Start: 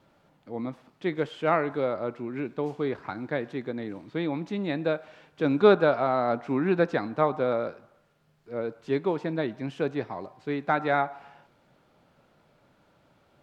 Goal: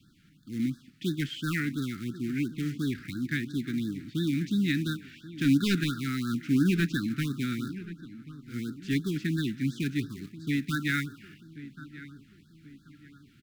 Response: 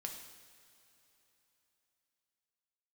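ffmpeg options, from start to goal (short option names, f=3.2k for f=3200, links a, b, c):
-filter_complex "[0:a]acrossover=split=450|1100[a][b][c];[b]acompressor=threshold=-39dB:ratio=6[d];[a][d][c]amix=inputs=3:normalize=0,volume=21dB,asoftclip=hard,volume=-21dB,asplit=2[e][f];[f]acrusher=bits=2:mode=log:mix=0:aa=0.000001,volume=-9dB[g];[e][g]amix=inputs=2:normalize=0,asuperstop=centerf=690:order=8:qfactor=0.53,asplit=2[h][i];[i]adelay=1085,lowpass=f=1.9k:p=1,volume=-15dB,asplit=2[j][k];[k]adelay=1085,lowpass=f=1.9k:p=1,volume=0.43,asplit=2[l][m];[m]adelay=1085,lowpass=f=1.9k:p=1,volume=0.43,asplit=2[n][o];[o]adelay=1085,lowpass=f=1.9k:p=1,volume=0.43[p];[h][j][l][n][p]amix=inputs=5:normalize=0,afftfilt=real='re*(1-between(b*sr/1024,730*pow(2500/730,0.5+0.5*sin(2*PI*2.9*pts/sr))/1.41,730*pow(2500/730,0.5+0.5*sin(2*PI*2.9*pts/sr))*1.41))':imag='im*(1-between(b*sr/1024,730*pow(2500/730,0.5+0.5*sin(2*PI*2.9*pts/sr))/1.41,730*pow(2500/730,0.5+0.5*sin(2*PI*2.9*pts/sr))*1.41))':win_size=1024:overlap=0.75,volume=3dB"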